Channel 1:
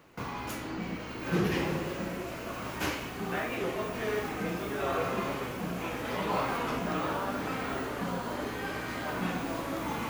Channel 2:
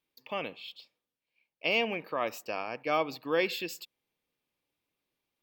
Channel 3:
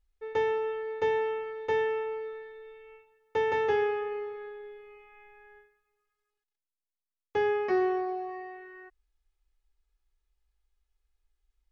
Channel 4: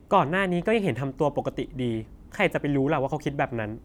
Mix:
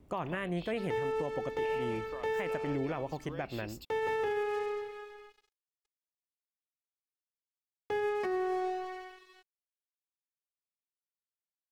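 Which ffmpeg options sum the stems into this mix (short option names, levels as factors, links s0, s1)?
-filter_complex "[1:a]acompressor=threshold=0.0112:ratio=4,volume=0.562[s0];[2:a]aeval=exprs='sgn(val(0))*max(abs(val(0))-0.00531,0)':c=same,adelay=550,volume=1.19[s1];[3:a]volume=0.376[s2];[s0][s1][s2]amix=inputs=3:normalize=0,alimiter=level_in=1.19:limit=0.0631:level=0:latency=1:release=110,volume=0.841"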